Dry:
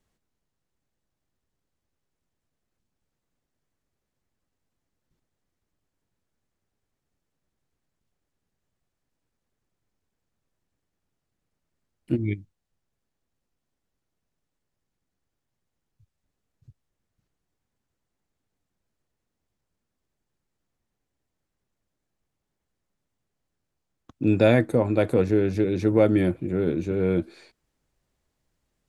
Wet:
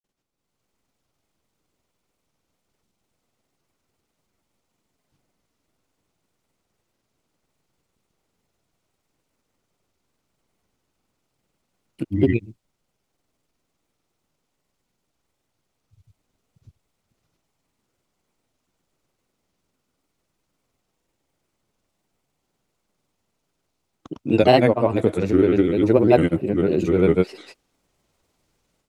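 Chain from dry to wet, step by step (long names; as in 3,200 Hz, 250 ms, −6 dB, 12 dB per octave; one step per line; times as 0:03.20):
granular cloud, pitch spread up and down by 3 semitones
parametric band 1,700 Hz −7 dB 0.21 octaves
automatic gain control gain up to 11.5 dB
low-shelf EQ 140 Hz −9 dB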